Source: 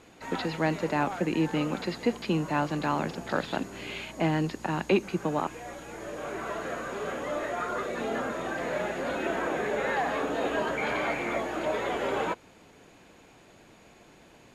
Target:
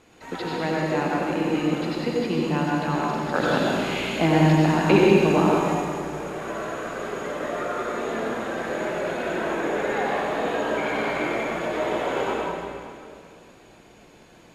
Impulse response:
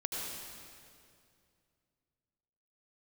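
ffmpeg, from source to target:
-filter_complex "[0:a]asettb=1/sr,asplit=3[link_01][link_02][link_03];[link_01]atrim=end=3.344[link_04];[link_02]atrim=start=3.34:end=5.74,asetpts=PTS-STARTPTS,afade=type=in:duration=0.004:curve=qsin,afade=type=out:start_time=2.396:duration=0.004:curve=qsin,acontrast=62[link_05];[link_03]atrim=start=5.736[link_06];[link_04][link_05]acrossfade=duration=0.004:curve1=hsin:curve2=qsin[link_07];[link_07][link_06]acrossfade=duration=0.004:curve1=qsin:curve2=hsin[link_08];[1:a]atrim=start_sample=2205,asetrate=43659,aresample=44100[link_09];[link_08][link_09]afir=irnorm=-1:irlink=0"

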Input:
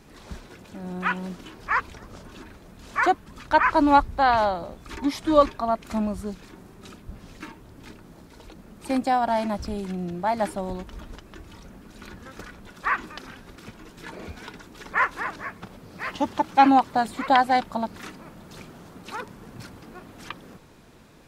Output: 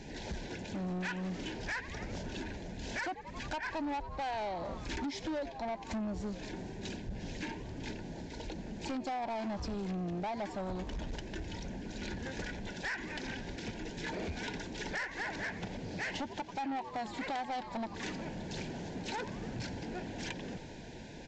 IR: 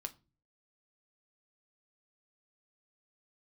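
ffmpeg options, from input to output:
-filter_complex "[0:a]asuperstop=centerf=1200:order=8:qfactor=2.4,asplit=5[link_01][link_02][link_03][link_04][link_05];[link_02]adelay=89,afreqshift=110,volume=-20dB[link_06];[link_03]adelay=178,afreqshift=220,volume=-25.5dB[link_07];[link_04]adelay=267,afreqshift=330,volume=-31dB[link_08];[link_05]adelay=356,afreqshift=440,volume=-36.5dB[link_09];[link_01][link_06][link_07][link_08][link_09]amix=inputs=5:normalize=0,acompressor=threshold=-35dB:ratio=6,aresample=16000,asoftclip=type=tanh:threshold=-38dB,aresample=44100,volume=5dB"

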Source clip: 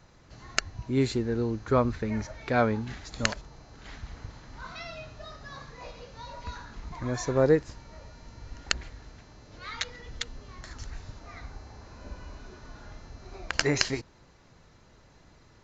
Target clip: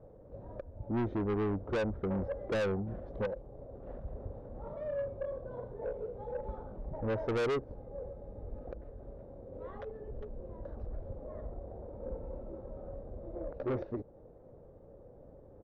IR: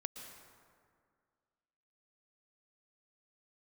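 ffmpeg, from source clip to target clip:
-af "alimiter=limit=-16dB:level=0:latency=1:release=376,lowpass=frequency=600:width_type=q:width=4.9,asetrate=39289,aresample=44100,atempo=1.12246,asoftclip=type=tanh:threshold=-29dB"

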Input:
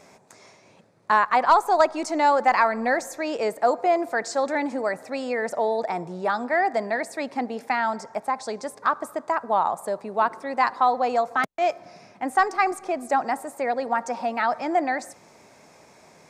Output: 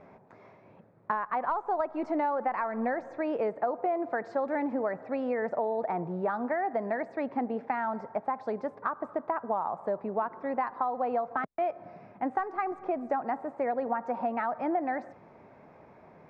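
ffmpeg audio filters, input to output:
ffmpeg -i in.wav -af "lowshelf=frequency=190:gain=4,acompressor=threshold=-24dB:ratio=12,lowpass=1700,aemphasis=mode=reproduction:type=50fm,volume=-1.5dB" out.wav

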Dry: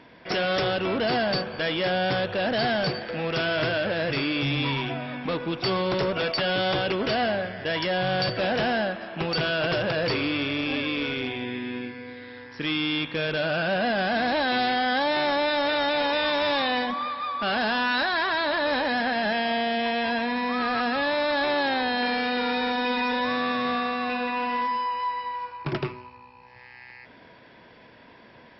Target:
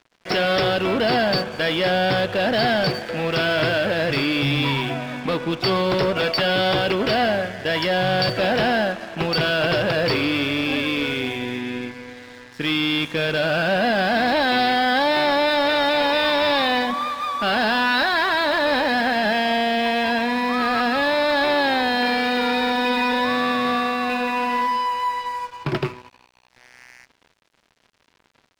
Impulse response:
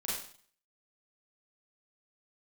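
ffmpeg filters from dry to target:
-af "acontrast=48,aeval=exprs='sgn(val(0))*max(abs(val(0))-0.0106,0)':channel_layout=same"

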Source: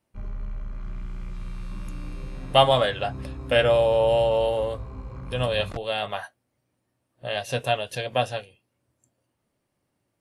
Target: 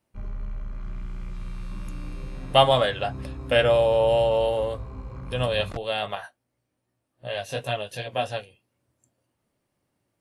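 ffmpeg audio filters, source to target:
ffmpeg -i in.wav -filter_complex "[0:a]asettb=1/sr,asplit=3[link_01][link_02][link_03];[link_01]atrim=end=6.154[link_04];[link_02]atrim=start=6.15:end=8.3,asetpts=PTS-STARTPTS,afade=type=in:duration=0.004:curve=qsin,afade=type=out:start_time=2.146:duration=0.004:curve=qsin,flanger=delay=16:depth=4:speed=2.6[link_05];[link_03]atrim=start=8.296[link_06];[link_04][link_05]acrossfade=duration=0.004:curve1=hsin:curve2=qsin[link_07];[link_07][link_06]acrossfade=duration=0.004:curve1=qsin:curve2=hsin" out.wav

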